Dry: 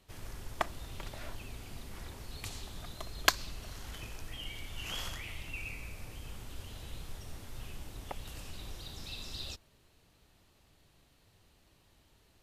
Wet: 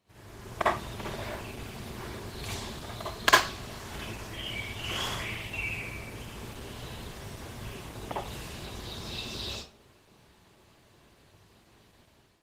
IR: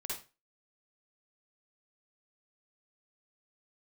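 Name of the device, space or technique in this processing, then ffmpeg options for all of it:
far-field microphone of a smart speaker: -filter_complex "[0:a]asettb=1/sr,asplit=3[link_01][link_02][link_03];[link_01]atrim=end=2.794[link_04];[link_02]atrim=start=2.79:end=4.8,asetpts=PTS-STARTPTS,afade=type=in:duration=0.004:curve=qsin,afade=type=out:start_time=2.006:duration=0.004:curve=qsin,bandreject=frequency=372.4:width_type=h:width=4,bandreject=frequency=744.8:width_type=h:width=4,bandreject=frequency=1117.2:width_type=h:width=4,bandreject=frequency=1489.6:width_type=h:width=4,bandreject=frequency=1862:width_type=h:width=4,bandreject=frequency=2234.4:width_type=h:width=4,bandreject=frequency=2606.8:width_type=h:width=4,bandreject=frequency=2979.2:width_type=h:width=4,bandreject=frequency=3351.6:width_type=h:width=4,bandreject=frequency=3724:width_type=h:width=4,bandreject=frequency=4096.4:width_type=h:width=4,bandreject=frequency=4468.8:width_type=h:width=4,bandreject=frequency=4841.2:width_type=h:width=4,bandreject=frequency=5213.6:width_type=h:width=4,bandreject=frequency=5586:width_type=h:width=4,bandreject=frequency=5958.4:width_type=h:width=4,bandreject=frequency=6330.8:width_type=h:width=4,bandreject=frequency=6703.2:width_type=h:width=4,bandreject=frequency=7075.6:width_type=h:width=4,bandreject=frequency=7448:width_type=h:width=4,bandreject=frequency=7820.4:width_type=h:width=4,bandreject=frequency=8192.8:width_type=h:width=4,bandreject=frequency=8565.2:width_type=h:width=4,bandreject=frequency=8937.6:width_type=h:width=4,bandreject=frequency=9310:width_type=h:width=4,bandreject=frequency=9682.4:width_type=h:width=4,bandreject=frequency=10054.8:width_type=h:width=4,bandreject=frequency=10427.2:width_type=h:width=4,bandreject=frequency=10799.6:width_type=h:width=4,bandreject=frequency=11172:width_type=h:width=4[link_05];[link_03]atrim=start=4.796[link_06];[link_04][link_05]acrossfade=duration=0.004:curve1=hsin:curve2=qsin[link_07];[link_07][link_06]acrossfade=duration=0.004:curve1=qsin:curve2=hsin,highshelf=frequency=3700:gain=-6[link_08];[1:a]atrim=start_sample=2205[link_09];[link_08][link_09]afir=irnorm=-1:irlink=0,highpass=85,dynaudnorm=framelen=190:gausssize=5:maxgain=11dB" -ar 48000 -c:a libopus -b:a 16k

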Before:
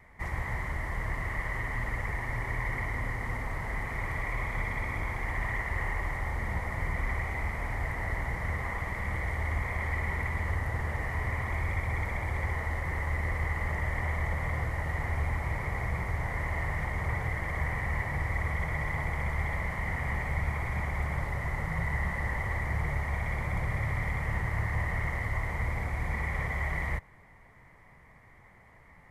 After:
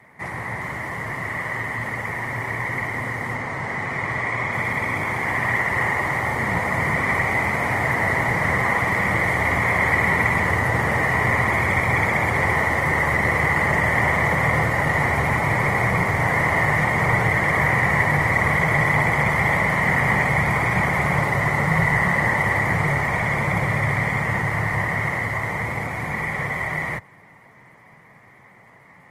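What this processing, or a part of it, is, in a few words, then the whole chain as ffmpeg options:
video call: -filter_complex "[0:a]asettb=1/sr,asplit=3[link_01][link_02][link_03];[link_01]atrim=end=3.344[link_04];[link_02]atrim=start=3.34:end=4.54,asetpts=PTS-STARTPTS,afade=type=in:duration=0.004:curve=qsin,afade=type=out:start_time=1.196:duration=0.004:curve=qsin,lowpass=8100[link_05];[link_03]atrim=start=4.536[link_06];[link_04][link_05]acrossfade=duration=0.004:curve1=hsin:curve2=qsin[link_07];[link_07][link_06]acrossfade=duration=0.004:curve1=qsin:curve2=hsin,highpass=frequency=120:width=0.5412,highpass=frequency=120:width=1.3066,dynaudnorm=framelen=530:gausssize=21:maxgain=7.5dB,volume=8.5dB" -ar 48000 -c:a libopus -b:a 24k

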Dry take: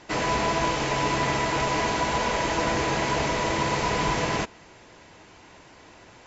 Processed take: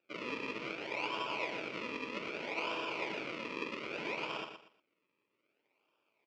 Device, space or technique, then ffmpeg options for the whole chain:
circuit-bent sampling toy: -filter_complex "[0:a]asettb=1/sr,asplit=3[link_01][link_02][link_03];[link_01]atrim=end=3.304[link_04];[link_02]atrim=start=3.3:end=3.98,asetpts=PTS-STARTPTS,afade=type=in:duration=0.004:curve=qsin,afade=type=out:start_time=0.676:duration=0.004:curve=qsin,highpass=frequency=160:width=0.5412,highpass=frequency=160:width=1.3066[link_05];[link_03]atrim=start=3.976[link_06];[link_04][link_05]acrossfade=duration=0.004:curve1=hsin:curve2=qsin[link_07];[link_07][link_06]acrossfade=duration=0.004:curve1=qsin:curve2=hsin,afwtdn=0.0398,aemphasis=mode=production:type=50fm,acrusher=samples=41:mix=1:aa=0.000001:lfo=1:lforange=41:lforate=0.63,highpass=500,equalizer=frequency=510:width_type=q:width=4:gain=-3,equalizer=frequency=730:width_type=q:width=4:gain=-10,equalizer=frequency=1100:width_type=q:width=4:gain=-4,equalizer=frequency=1700:width_type=q:width=4:gain=-10,equalizer=frequency=2400:width_type=q:width=4:gain=10,equalizer=frequency=3800:width_type=q:width=4:gain=-7,lowpass=frequency=4300:width=0.5412,lowpass=frequency=4300:width=1.3066,aecho=1:1:118|236|354:0.398|0.104|0.0269,volume=-7.5dB"

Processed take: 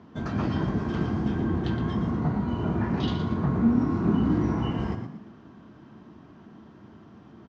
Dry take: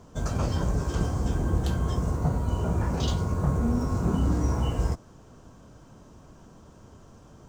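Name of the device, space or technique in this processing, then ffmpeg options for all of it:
frequency-shifting delay pedal into a guitar cabinet: -filter_complex "[0:a]asplit=5[link_01][link_02][link_03][link_04][link_05];[link_02]adelay=117,afreqshift=48,volume=-8.5dB[link_06];[link_03]adelay=234,afreqshift=96,volume=-18.1dB[link_07];[link_04]adelay=351,afreqshift=144,volume=-27.8dB[link_08];[link_05]adelay=468,afreqshift=192,volume=-37.4dB[link_09];[link_01][link_06][link_07][link_08][link_09]amix=inputs=5:normalize=0,highpass=110,equalizer=frequency=220:width_type=q:width=4:gain=7,equalizer=frequency=330:width_type=q:width=4:gain=6,equalizer=frequency=530:width_type=q:width=4:gain=-8,equalizer=frequency=1900:width_type=q:width=4:gain=6,lowpass=frequency=4000:width=0.5412,lowpass=frequency=4000:width=1.3066"

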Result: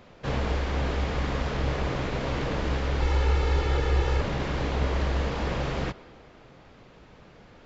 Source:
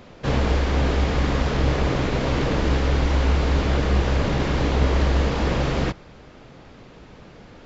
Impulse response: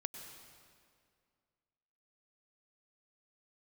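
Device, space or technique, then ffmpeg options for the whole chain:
filtered reverb send: -filter_complex "[0:a]asplit=2[link_01][link_02];[link_02]highpass=frequency=260:width=0.5412,highpass=frequency=260:width=1.3066,lowpass=4100[link_03];[1:a]atrim=start_sample=2205[link_04];[link_03][link_04]afir=irnorm=-1:irlink=0,volume=-9.5dB[link_05];[link_01][link_05]amix=inputs=2:normalize=0,asettb=1/sr,asplit=3[link_06][link_07][link_08];[link_06]atrim=end=3.004[link_09];[link_07]atrim=start=3:end=4.21,asetpts=PTS-STARTPTS,afade=type=in:duration=0.004:curve=qsin,afade=type=out:start_time=1.206:duration=0.004:curve=qsin,aecho=1:1:2.3:0.71,atrim=end_sample=53361[link_10];[link_08]atrim=start=4.206[link_11];[link_09][link_10]acrossfade=duration=0.004:curve1=hsin:curve2=qsin[link_12];[link_12][link_11]acrossfade=duration=0.004:curve1=qsin:curve2=hsin,volume=-7dB"

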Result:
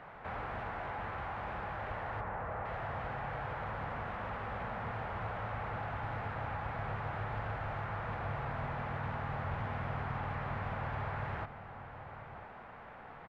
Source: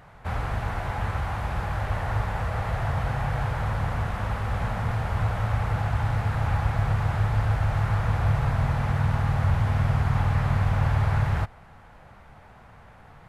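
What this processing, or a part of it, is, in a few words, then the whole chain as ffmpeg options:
de-esser from a sidechain: -filter_complex "[0:a]acrossover=split=210 3300:gain=0.224 1 0.0708[link_01][link_02][link_03];[link_01][link_02][link_03]amix=inputs=3:normalize=0,asplit=3[link_04][link_05][link_06];[link_04]afade=type=out:start_time=2.2:duration=0.02[link_07];[link_05]lowpass=1800,afade=type=in:start_time=2.2:duration=0.02,afade=type=out:start_time=2.64:duration=0.02[link_08];[link_06]afade=type=in:start_time=2.64:duration=0.02[link_09];[link_07][link_08][link_09]amix=inputs=3:normalize=0,asplit=2[link_10][link_11];[link_11]adelay=991.3,volume=-22dB,highshelf=frequency=4000:gain=-22.3[link_12];[link_10][link_12]amix=inputs=2:normalize=0,asplit=2[link_13][link_14];[link_14]highpass=frequency=4300:poles=1,apad=whole_len=629393[link_15];[link_13][link_15]sidechaincompress=threshold=-55dB:ratio=3:attack=1.7:release=23,volume=2dB"

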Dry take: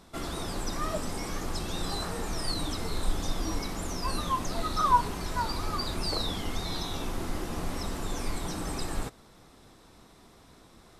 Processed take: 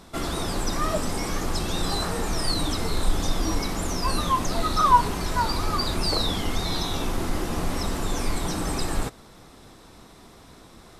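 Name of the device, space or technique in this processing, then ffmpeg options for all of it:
parallel distortion: -filter_complex "[0:a]asplit=2[link_01][link_02];[link_02]asoftclip=type=hard:threshold=-27dB,volume=-13.5dB[link_03];[link_01][link_03]amix=inputs=2:normalize=0,volume=5dB"

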